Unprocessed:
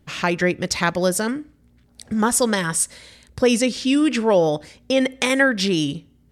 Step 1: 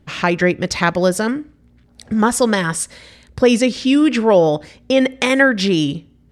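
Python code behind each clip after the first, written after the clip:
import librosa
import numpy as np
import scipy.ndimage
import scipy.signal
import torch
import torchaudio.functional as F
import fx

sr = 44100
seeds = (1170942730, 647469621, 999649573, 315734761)

y = fx.lowpass(x, sr, hz=4000.0, slope=6)
y = y * librosa.db_to_amplitude(4.5)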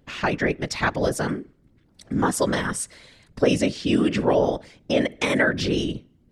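y = fx.whisperise(x, sr, seeds[0])
y = y * librosa.db_to_amplitude(-7.0)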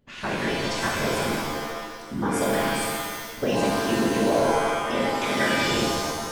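y = fx.rev_shimmer(x, sr, seeds[1], rt60_s=1.5, semitones=7, shimmer_db=-2, drr_db=-3.0)
y = y * librosa.db_to_amplitude(-8.5)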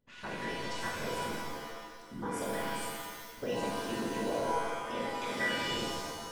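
y = fx.comb_fb(x, sr, f0_hz=490.0, decay_s=0.27, harmonics='all', damping=0.0, mix_pct=80)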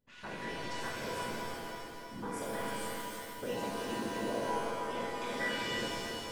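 y = fx.echo_feedback(x, sr, ms=318, feedback_pct=52, wet_db=-6.0)
y = y * librosa.db_to_amplitude(-3.0)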